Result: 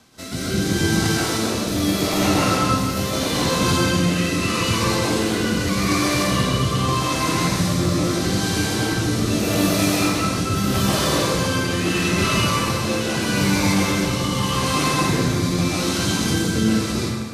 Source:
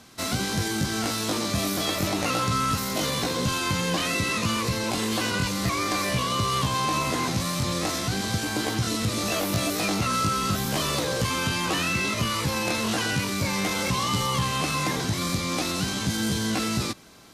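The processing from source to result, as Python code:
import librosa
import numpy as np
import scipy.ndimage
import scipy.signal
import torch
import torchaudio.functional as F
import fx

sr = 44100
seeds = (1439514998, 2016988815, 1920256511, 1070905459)

y = fx.rotary(x, sr, hz=0.8)
y = fx.rev_plate(y, sr, seeds[0], rt60_s=1.8, hf_ratio=0.65, predelay_ms=115, drr_db=-7.0)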